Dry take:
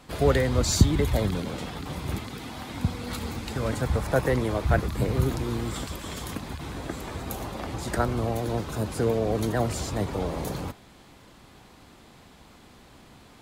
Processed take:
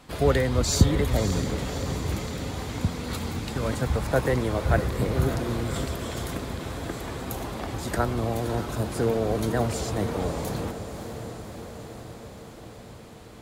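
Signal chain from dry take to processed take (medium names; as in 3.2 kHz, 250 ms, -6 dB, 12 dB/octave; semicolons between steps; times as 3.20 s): echo that smears into a reverb 590 ms, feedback 70%, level -10 dB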